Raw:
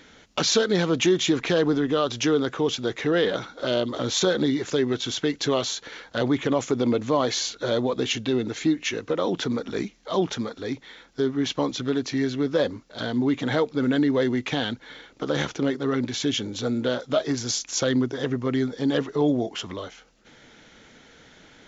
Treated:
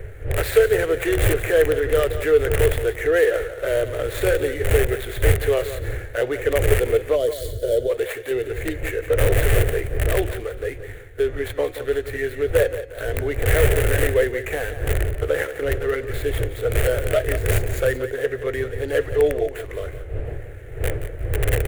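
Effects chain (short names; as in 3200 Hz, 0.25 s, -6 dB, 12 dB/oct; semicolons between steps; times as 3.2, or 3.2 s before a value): median filter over 15 samples; wind noise 120 Hz -20 dBFS; de-hum 181.4 Hz, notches 39; in parallel at -10 dB: wrapped overs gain 11 dB; on the sum: EQ curve 110 Hz 0 dB, 210 Hz -24 dB, 440 Hz +11 dB, 660 Hz +5 dB, 990 Hz -6 dB, 1800 Hz +14 dB, 2900 Hz +9 dB, 5100 Hz -5 dB, 8900 Hz +14 dB; 7.16–7.9 spectral gain 710–2900 Hz -15 dB; 7.88–8.31 low shelf 180 Hz -11 dB; on a send: feedback echo 0.176 s, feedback 26%, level -12 dB; on the sum: gain -5 dB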